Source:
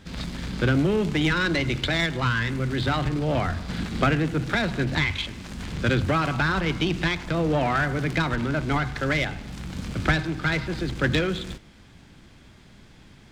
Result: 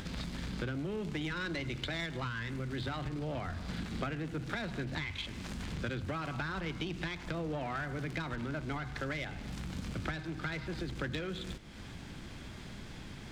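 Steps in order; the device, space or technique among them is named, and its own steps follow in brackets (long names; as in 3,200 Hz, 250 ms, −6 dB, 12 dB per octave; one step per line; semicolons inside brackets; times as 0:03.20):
upward and downward compression (upward compression, threshold −28 dBFS; downward compressor 5 to 1, threshold −28 dBFS, peak gain reduction 11.5 dB)
level −6.5 dB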